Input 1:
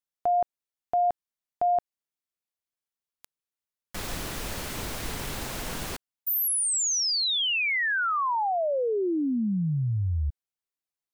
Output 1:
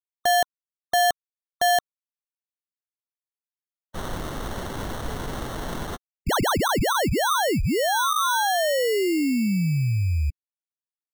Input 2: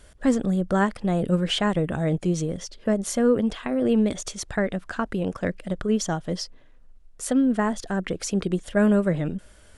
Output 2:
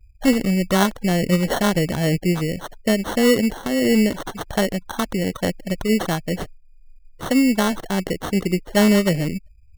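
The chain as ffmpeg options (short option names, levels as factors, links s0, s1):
-af "afftfilt=real='re*gte(hypot(re,im),0.0126)':imag='im*gte(hypot(re,im),0.0126)':win_size=1024:overlap=0.75,acrusher=samples=18:mix=1:aa=0.000001,volume=1.58"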